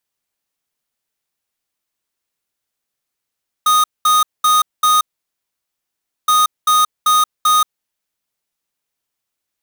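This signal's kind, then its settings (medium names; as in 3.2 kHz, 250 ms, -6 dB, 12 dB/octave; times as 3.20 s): beep pattern square 1.24 kHz, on 0.18 s, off 0.21 s, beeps 4, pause 1.27 s, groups 2, -12 dBFS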